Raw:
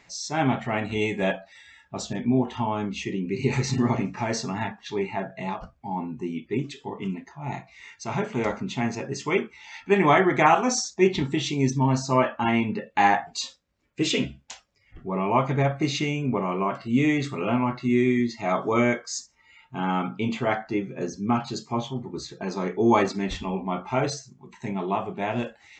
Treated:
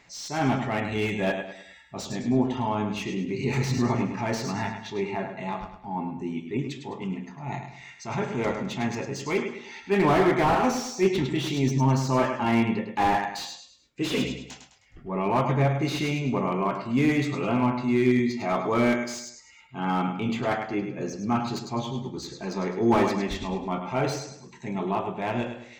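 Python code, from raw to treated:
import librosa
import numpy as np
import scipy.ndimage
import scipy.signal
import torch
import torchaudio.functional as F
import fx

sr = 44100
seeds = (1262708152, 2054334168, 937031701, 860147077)

y = fx.transient(x, sr, attack_db=-5, sustain_db=-1)
y = fx.echo_feedback(y, sr, ms=104, feedback_pct=39, wet_db=-8)
y = fx.slew_limit(y, sr, full_power_hz=96.0)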